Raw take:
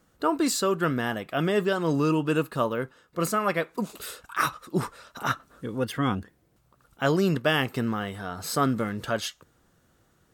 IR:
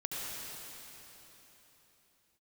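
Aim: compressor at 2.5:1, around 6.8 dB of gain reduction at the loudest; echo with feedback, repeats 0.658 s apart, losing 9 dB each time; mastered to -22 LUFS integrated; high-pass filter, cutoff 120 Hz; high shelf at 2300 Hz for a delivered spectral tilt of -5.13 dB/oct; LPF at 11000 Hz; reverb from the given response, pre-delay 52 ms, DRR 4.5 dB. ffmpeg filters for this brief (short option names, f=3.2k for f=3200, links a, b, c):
-filter_complex "[0:a]highpass=120,lowpass=11k,highshelf=f=2.3k:g=-3.5,acompressor=threshold=-30dB:ratio=2.5,aecho=1:1:658|1316|1974|2632:0.355|0.124|0.0435|0.0152,asplit=2[a][b];[1:a]atrim=start_sample=2205,adelay=52[c];[b][c]afir=irnorm=-1:irlink=0,volume=-8dB[d];[a][d]amix=inputs=2:normalize=0,volume=10.5dB"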